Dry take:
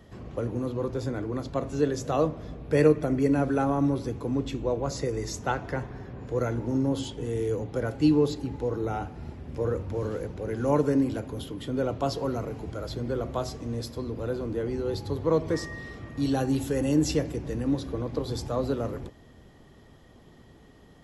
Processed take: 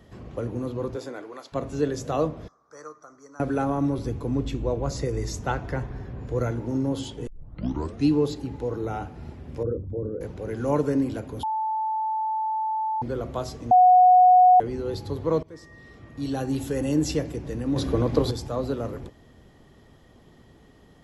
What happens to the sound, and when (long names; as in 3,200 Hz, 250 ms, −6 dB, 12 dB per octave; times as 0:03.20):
0:00.95–0:01.52: high-pass filter 260 Hz → 950 Hz
0:02.48–0:03.40: pair of resonant band-passes 2,700 Hz, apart 2.3 octaves
0:03.98–0:06.51: low-shelf EQ 89 Hz +11.5 dB
0:07.27: tape start 0.82 s
0:09.63–0:10.21: spectral envelope exaggerated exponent 2
0:11.43–0:13.02: beep over 876 Hz −23.5 dBFS
0:13.71–0:14.60: beep over 732 Hz −11 dBFS
0:15.43–0:16.68: fade in, from −21.5 dB
0:17.76–0:18.31: clip gain +8.5 dB